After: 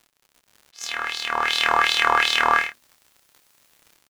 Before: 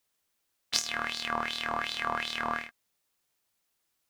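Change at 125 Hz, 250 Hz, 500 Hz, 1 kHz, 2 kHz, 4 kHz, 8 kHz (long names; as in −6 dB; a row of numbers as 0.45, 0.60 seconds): can't be measured, +1.5 dB, +9.0 dB, +12.5 dB, +12.5 dB, +10.5 dB, +4.0 dB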